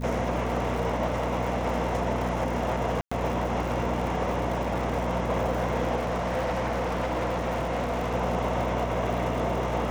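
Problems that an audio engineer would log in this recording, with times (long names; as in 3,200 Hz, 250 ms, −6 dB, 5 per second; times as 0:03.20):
surface crackle 160 per second −34 dBFS
mains hum 60 Hz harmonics 4 −32 dBFS
0:03.01–0:03.12: drop-out 105 ms
0:05.96–0:08.14: clipping −24 dBFS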